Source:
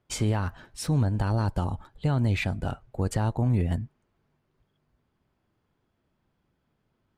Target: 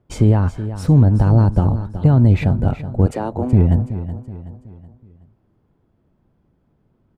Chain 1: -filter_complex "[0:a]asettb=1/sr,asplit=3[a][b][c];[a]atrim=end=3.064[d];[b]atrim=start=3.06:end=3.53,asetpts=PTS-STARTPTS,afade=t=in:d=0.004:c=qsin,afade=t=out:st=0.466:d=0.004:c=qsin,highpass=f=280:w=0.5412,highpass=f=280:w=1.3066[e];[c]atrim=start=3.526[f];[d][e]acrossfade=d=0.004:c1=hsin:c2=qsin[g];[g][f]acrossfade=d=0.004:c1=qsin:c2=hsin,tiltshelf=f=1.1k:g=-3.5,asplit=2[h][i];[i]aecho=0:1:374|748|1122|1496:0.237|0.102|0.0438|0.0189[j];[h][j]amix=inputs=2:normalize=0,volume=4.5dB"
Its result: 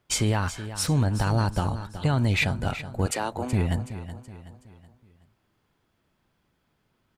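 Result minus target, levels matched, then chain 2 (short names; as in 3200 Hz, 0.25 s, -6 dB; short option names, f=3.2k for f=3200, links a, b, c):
1000 Hz band +7.5 dB
-filter_complex "[0:a]asettb=1/sr,asplit=3[a][b][c];[a]atrim=end=3.064[d];[b]atrim=start=3.06:end=3.53,asetpts=PTS-STARTPTS,afade=t=in:d=0.004:c=qsin,afade=t=out:st=0.466:d=0.004:c=qsin,highpass=f=280:w=0.5412,highpass=f=280:w=1.3066[e];[c]atrim=start=3.526[f];[d][e]acrossfade=d=0.004:c1=hsin:c2=qsin[g];[g][f]acrossfade=d=0.004:c1=qsin:c2=hsin,tiltshelf=f=1.1k:g=8.5,asplit=2[h][i];[i]aecho=0:1:374|748|1122|1496:0.237|0.102|0.0438|0.0189[j];[h][j]amix=inputs=2:normalize=0,volume=4.5dB"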